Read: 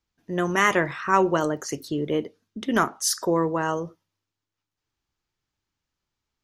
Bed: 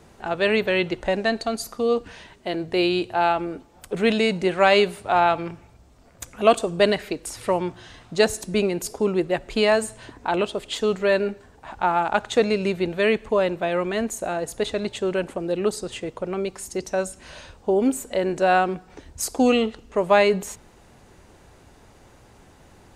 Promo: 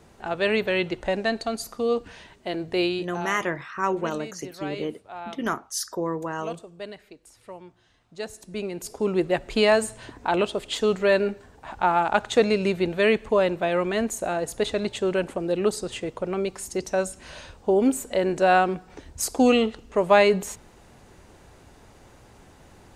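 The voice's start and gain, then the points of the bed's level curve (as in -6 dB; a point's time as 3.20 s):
2.70 s, -5.5 dB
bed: 2.84 s -2.5 dB
3.44 s -19 dB
7.99 s -19 dB
9.23 s 0 dB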